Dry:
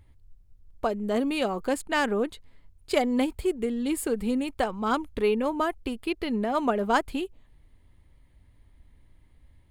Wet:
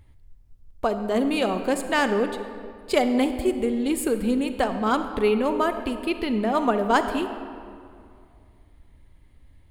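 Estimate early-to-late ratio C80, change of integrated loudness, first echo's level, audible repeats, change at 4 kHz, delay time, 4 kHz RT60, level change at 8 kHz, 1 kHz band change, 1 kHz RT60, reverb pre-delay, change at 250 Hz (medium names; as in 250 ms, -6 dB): 10.0 dB, +3.5 dB, no echo, no echo, +3.5 dB, no echo, 1.4 s, +3.0 dB, +3.5 dB, 2.3 s, 35 ms, +3.5 dB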